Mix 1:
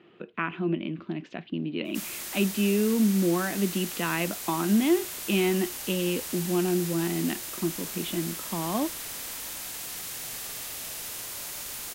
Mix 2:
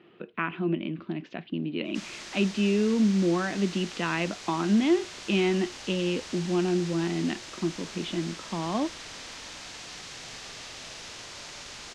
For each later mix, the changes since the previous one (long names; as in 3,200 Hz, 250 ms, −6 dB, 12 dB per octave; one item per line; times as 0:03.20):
master: add low-pass filter 6,100 Hz 24 dB per octave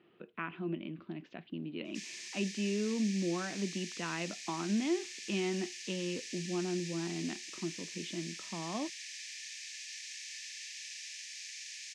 speech −9.5 dB
background: add Chebyshev high-pass with heavy ripple 1,700 Hz, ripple 6 dB